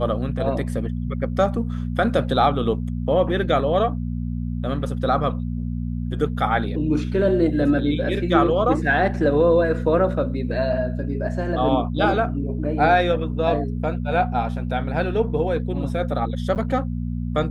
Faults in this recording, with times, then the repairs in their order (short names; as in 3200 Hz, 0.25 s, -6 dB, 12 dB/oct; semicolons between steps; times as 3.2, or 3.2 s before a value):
hum 60 Hz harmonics 4 -26 dBFS
16.55–16.56 gap 8.8 ms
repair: de-hum 60 Hz, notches 4; interpolate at 16.55, 8.8 ms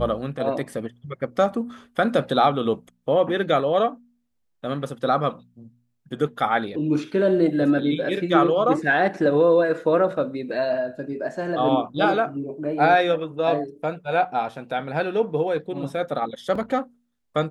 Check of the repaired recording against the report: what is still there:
none